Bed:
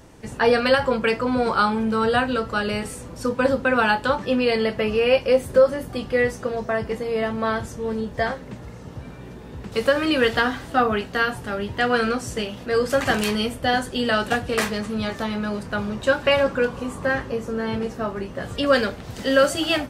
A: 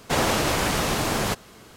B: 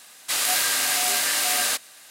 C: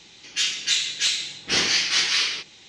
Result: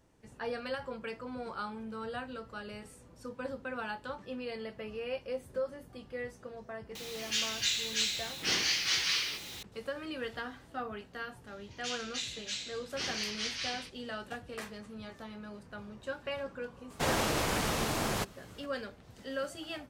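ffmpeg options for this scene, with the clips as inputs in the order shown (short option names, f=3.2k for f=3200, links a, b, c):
-filter_complex "[3:a]asplit=2[a][b];[0:a]volume=-19.5dB[c];[a]aeval=exprs='val(0)+0.5*0.0299*sgn(val(0))':c=same,atrim=end=2.68,asetpts=PTS-STARTPTS,volume=-10dB,afade=t=in:d=0.004:c=hsin,afade=t=out:st=2.676:d=0.004:c=hsin,adelay=6950[d];[b]atrim=end=2.68,asetpts=PTS-STARTPTS,volume=-16dB,afade=t=in:d=0.004:c=hsin,afade=t=out:st=2.676:d=0.004:c=hsin,adelay=11470[e];[1:a]atrim=end=1.76,asetpts=PTS-STARTPTS,volume=-8dB,afade=t=in:d=0.004:c=hsin,afade=t=out:st=1.756:d=0.004:c=hsin,adelay=16900[f];[c][d][e][f]amix=inputs=4:normalize=0"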